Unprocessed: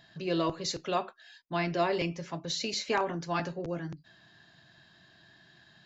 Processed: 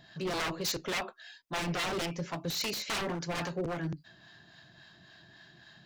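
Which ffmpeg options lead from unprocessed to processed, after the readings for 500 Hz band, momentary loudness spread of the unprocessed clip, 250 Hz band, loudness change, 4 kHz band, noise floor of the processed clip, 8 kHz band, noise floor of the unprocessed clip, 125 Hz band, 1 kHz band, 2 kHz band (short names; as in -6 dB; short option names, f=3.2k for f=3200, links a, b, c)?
-4.5 dB, 9 LU, -2.5 dB, -2.0 dB, +1.0 dB, -59 dBFS, n/a, -61 dBFS, -0.5 dB, -4.5 dB, +1.0 dB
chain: -filter_complex "[0:a]aeval=exprs='0.0282*(abs(mod(val(0)/0.0282+3,4)-2)-1)':c=same,acrossover=split=650[a][b];[a]aeval=exprs='val(0)*(1-0.5/2+0.5/2*cos(2*PI*3.6*n/s))':c=same[c];[b]aeval=exprs='val(0)*(1-0.5/2-0.5/2*cos(2*PI*3.6*n/s))':c=same[d];[c][d]amix=inputs=2:normalize=0,volume=5dB"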